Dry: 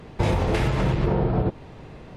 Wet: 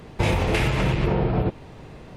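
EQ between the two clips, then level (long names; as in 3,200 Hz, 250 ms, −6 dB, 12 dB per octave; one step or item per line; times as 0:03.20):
high-shelf EQ 7,600 Hz +8.5 dB
dynamic equaliser 2,500 Hz, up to +7 dB, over −48 dBFS, Q 1.7
0.0 dB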